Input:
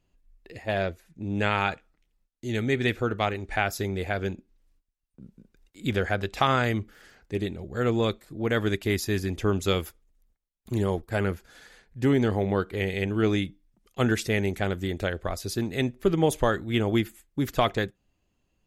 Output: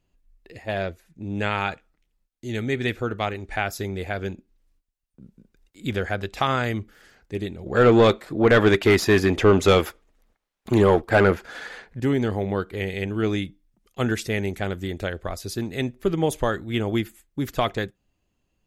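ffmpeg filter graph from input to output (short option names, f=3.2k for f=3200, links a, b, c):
-filter_complex "[0:a]asettb=1/sr,asplit=3[a][b][c];[a]atrim=end=7.664[d];[b]atrim=start=7.66:end=12,asetpts=PTS-STARTPTS,afade=t=in:d=0.004:c=qsin,afade=t=out:st=4.336:d=0.004:c=qsin,asplit=2[e][f];[f]highpass=f=720:p=1,volume=18dB,asoftclip=type=tanh:threshold=-11dB[g];[e][g]amix=inputs=2:normalize=0,lowpass=f=1.4k:p=1,volume=-6dB,acontrast=82[h];[c]atrim=start=11.996[i];[d][h]acrossfade=d=0.004:c1=hsin:c2=qsin[j];[j][i]acrossfade=d=0.004:c1=qsin:c2=hsin"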